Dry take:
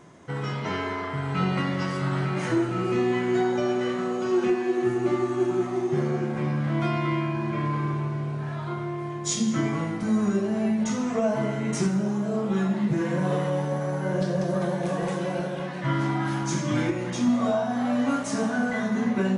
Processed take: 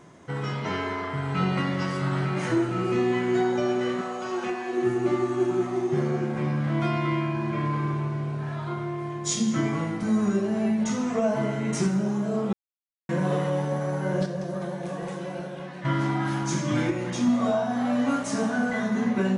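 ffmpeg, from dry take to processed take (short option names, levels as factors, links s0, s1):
-filter_complex "[0:a]asettb=1/sr,asplit=3[s0][s1][s2];[s0]atrim=end=4.014[s3];[s1]atrim=start=4.01:end=4.73,asetpts=PTS-STARTPTS,afade=t=in:d=0.004:c=qsin,afade=t=out:st=0.716:d=0.004:c=qsin,lowshelf=f=500:t=q:w=1.5:g=-6.5[s4];[s2]atrim=start=4.726[s5];[s3][s4]acrossfade=d=0.004:c1=hsin:c2=qsin[s6];[s6][s5]acrossfade=d=0.004:c1=qsin:c2=hsin,asplit=5[s7][s8][s9][s10][s11];[s7]atrim=end=12.53,asetpts=PTS-STARTPTS,afade=t=out:st=12.526:d=0.004:c=hsin[s12];[s8]atrim=start=12.53:end=13.09,asetpts=PTS-STARTPTS,volume=0[s13];[s9]atrim=start=13.09:end=14.262,asetpts=PTS-STARTPTS,afade=t=in:d=0.004:c=hsin[s14];[s10]atrim=start=14.258:end=15.852,asetpts=PTS-STARTPTS,volume=0.531[s15];[s11]atrim=start=15.848[s16];[s12][s13][s14]concat=n=3:v=0:a=1[s17];[s17][s15]acrossfade=d=0.004:c1=hsin:c2=hsin[s18];[s18][s16]acrossfade=d=0.004:c1=hsin:c2=hsin"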